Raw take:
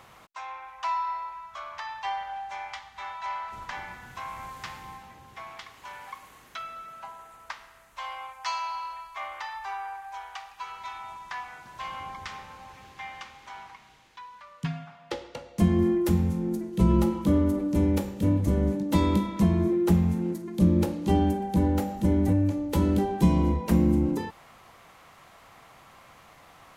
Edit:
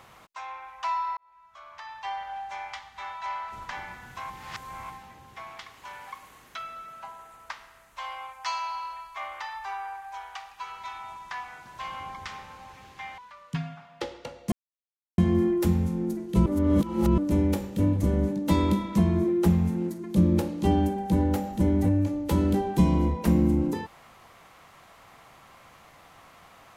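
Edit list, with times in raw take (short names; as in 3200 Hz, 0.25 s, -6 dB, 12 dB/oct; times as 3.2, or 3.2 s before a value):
1.17–2.4 fade in
4.3–4.9 reverse
13.18–14.28 cut
15.62 insert silence 0.66 s
16.9–17.62 reverse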